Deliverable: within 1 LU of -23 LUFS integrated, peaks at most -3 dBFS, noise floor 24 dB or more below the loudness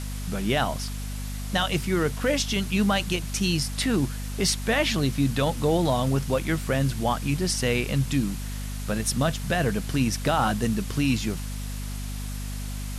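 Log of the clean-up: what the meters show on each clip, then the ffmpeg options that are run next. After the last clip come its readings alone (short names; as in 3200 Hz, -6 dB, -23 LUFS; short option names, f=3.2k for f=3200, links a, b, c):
hum 50 Hz; harmonics up to 250 Hz; hum level -30 dBFS; noise floor -32 dBFS; noise floor target -50 dBFS; loudness -26.0 LUFS; peak -12.0 dBFS; loudness target -23.0 LUFS
-> -af "bandreject=f=50:t=h:w=6,bandreject=f=100:t=h:w=6,bandreject=f=150:t=h:w=6,bandreject=f=200:t=h:w=6,bandreject=f=250:t=h:w=6"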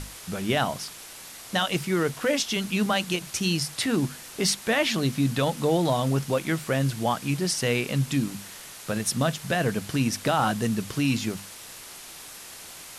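hum none; noise floor -43 dBFS; noise floor target -50 dBFS
-> -af "afftdn=nr=7:nf=-43"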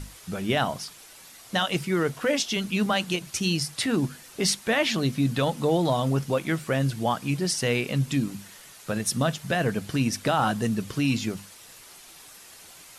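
noise floor -48 dBFS; noise floor target -50 dBFS
-> -af "afftdn=nr=6:nf=-48"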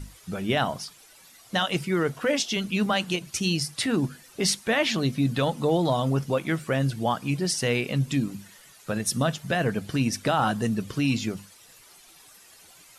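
noise floor -53 dBFS; loudness -26.0 LUFS; peak -11.5 dBFS; loudness target -23.0 LUFS
-> -af "volume=3dB"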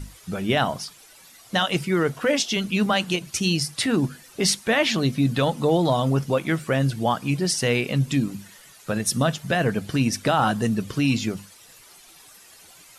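loudness -23.0 LUFS; peak -8.5 dBFS; noise floor -50 dBFS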